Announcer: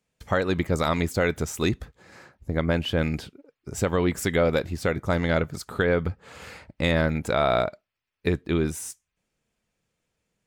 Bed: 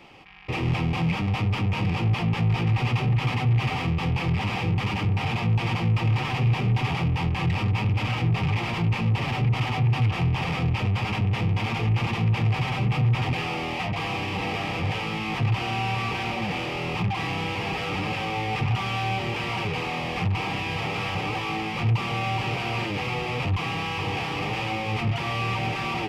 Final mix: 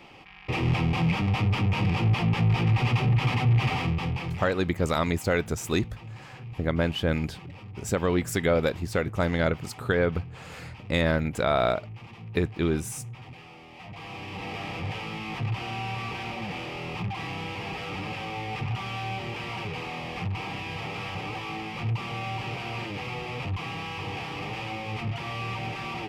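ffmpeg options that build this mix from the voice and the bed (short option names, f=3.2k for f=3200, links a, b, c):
-filter_complex "[0:a]adelay=4100,volume=-1.5dB[a];[1:a]volume=13dB,afade=t=out:st=3.72:d=0.86:silence=0.112202,afade=t=in:st=13.71:d=0.94:silence=0.223872[b];[a][b]amix=inputs=2:normalize=0"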